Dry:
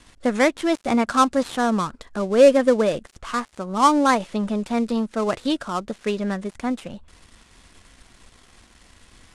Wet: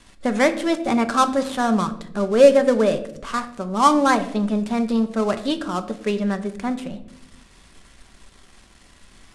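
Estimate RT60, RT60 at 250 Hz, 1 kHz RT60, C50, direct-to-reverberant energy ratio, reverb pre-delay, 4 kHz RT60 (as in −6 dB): 0.85 s, 1.3 s, 0.60 s, 13.5 dB, 8.0 dB, 5 ms, 0.45 s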